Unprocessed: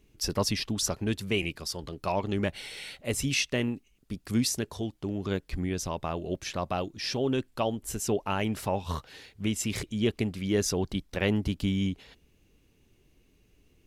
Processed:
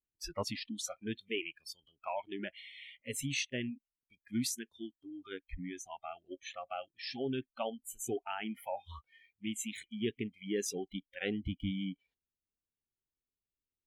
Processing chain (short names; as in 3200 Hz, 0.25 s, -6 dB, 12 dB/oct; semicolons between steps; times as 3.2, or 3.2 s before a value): spectral noise reduction 30 dB; high shelf 9000 Hz -6.5 dB, from 1.21 s +3.5 dB; gain -7.5 dB